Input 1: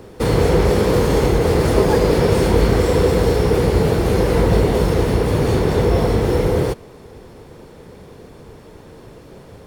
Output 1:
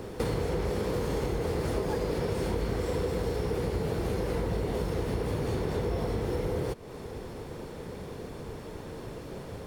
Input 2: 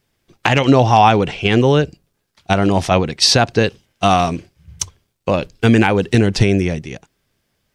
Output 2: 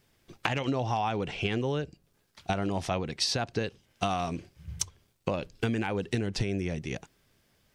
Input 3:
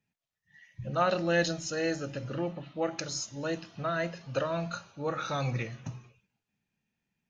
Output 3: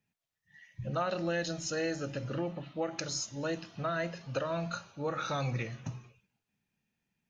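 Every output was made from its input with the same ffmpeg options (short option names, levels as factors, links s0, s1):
-af "acompressor=threshold=0.0355:ratio=5"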